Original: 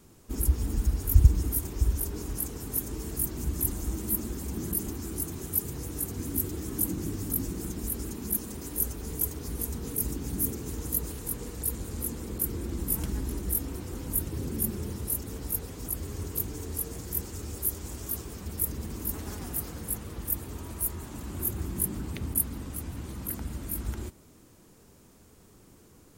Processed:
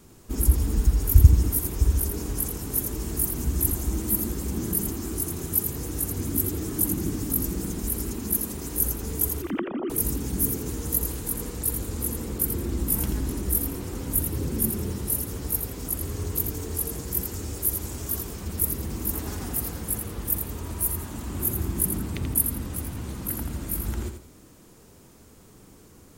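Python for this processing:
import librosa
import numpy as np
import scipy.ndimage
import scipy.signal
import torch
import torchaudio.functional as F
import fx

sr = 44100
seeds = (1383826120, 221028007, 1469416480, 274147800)

y = fx.sine_speech(x, sr, at=(9.42, 9.9))
y = fx.echo_feedback(y, sr, ms=84, feedback_pct=23, wet_db=-7)
y = y * 10.0 ** (4.0 / 20.0)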